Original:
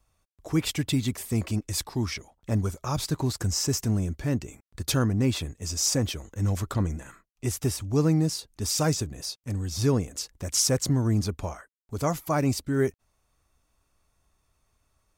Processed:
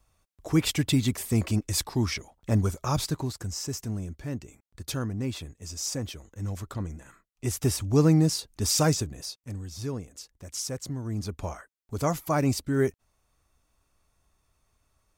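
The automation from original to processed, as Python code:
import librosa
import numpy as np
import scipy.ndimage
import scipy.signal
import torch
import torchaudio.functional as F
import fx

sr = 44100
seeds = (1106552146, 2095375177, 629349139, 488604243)

y = fx.gain(x, sr, db=fx.line((2.96, 2.0), (3.38, -7.0), (6.97, -7.0), (7.75, 2.5), (8.79, 2.5), (9.89, -10.0), (11.03, -10.0), (11.51, 0.0)))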